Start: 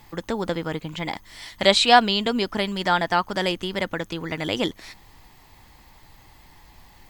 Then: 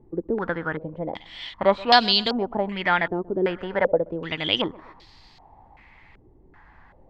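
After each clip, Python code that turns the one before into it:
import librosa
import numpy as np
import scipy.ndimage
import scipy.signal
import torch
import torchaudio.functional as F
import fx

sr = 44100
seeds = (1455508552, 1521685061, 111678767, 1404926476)

y = fx.echo_feedback(x, sr, ms=126, feedback_pct=47, wet_db=-21)
y = fx.spec_box(y, sr, start_s=3.62, length_s=0.34, low_hz=400.0, high_hz=970.0, gain_db=8)
y = fx.filter_held_lowpass(y, sr, hz=2.6, low_hz=390.0, high_hz=4500.0)
y = y * 10.0 ** (-3.0 / 20.0)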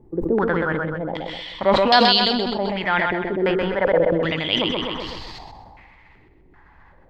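y = fx.rider(x, sr, range_db=4, speed_s=2.0)
y = fx.echo_feedback(y, sr, ms=128, feedback_pct=44, wet_db=-7.0)
y = fx.sustainer(y, sr, db_per_s=22.0)
y = y * 10.0 ** (-1.0 / 20.0)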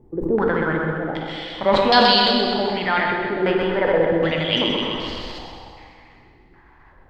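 y = fx.rev_plate(x, sr, seeds[0], rt60_s=2.2, hf_ratio=0.85, predelay_ms=0, drr_db=2.5)
y = y * 10.0 ** (-1.0 / 20.0)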